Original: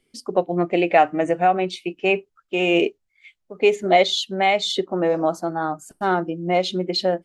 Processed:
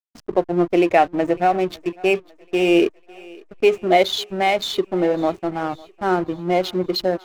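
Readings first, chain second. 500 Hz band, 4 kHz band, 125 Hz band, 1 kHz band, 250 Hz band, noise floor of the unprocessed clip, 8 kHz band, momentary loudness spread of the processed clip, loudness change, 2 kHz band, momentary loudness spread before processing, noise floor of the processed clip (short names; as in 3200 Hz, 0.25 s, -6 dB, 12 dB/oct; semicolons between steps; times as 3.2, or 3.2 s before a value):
+1.5 dB, -1.5 dB, +0.5 dB, -0.5 dB, +3.5 dB, -73 dBFS, -2.0 dB, 8 LU, +1.0 dB, -1.0 dB, 8 LU, -52 dBFS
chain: dynamic EQ 350 Hz, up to +5 dB, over -35 dBFS, Q 4.7; backlash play -26 dBFS; thinning echo 0.552 s, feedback 57%, high-pass 350 Hz, level -22 dB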